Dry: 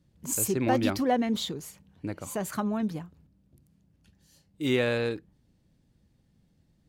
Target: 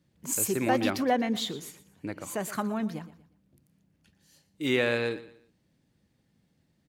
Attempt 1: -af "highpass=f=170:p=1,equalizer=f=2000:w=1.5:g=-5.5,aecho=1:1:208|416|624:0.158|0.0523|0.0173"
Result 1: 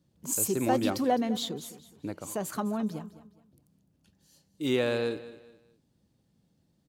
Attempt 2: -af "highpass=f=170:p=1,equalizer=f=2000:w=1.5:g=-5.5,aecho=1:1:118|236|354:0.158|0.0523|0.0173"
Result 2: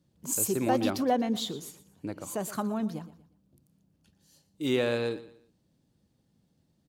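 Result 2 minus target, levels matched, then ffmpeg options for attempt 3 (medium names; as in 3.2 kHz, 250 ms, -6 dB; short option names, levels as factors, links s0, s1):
2 kHz band -6.0 dB
-af "highpass=f=170:p=1,equalizer=f=2000:w=1.5:g=3.5,aecho=1:1:118|236|354:0.158|0.0523|0.0173"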